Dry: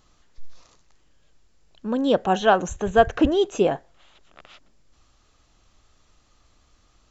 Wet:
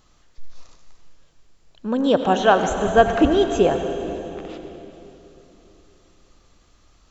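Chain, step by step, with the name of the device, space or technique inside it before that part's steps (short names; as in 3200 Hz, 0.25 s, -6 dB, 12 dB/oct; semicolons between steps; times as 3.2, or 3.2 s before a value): saturated reverb return (on a send at -5 dB: reverb RT60 3.1 s, pre-delay 75 ms + soft clip -13.5 dBFS, distortion -18 dB); on the sum: gain +2 dB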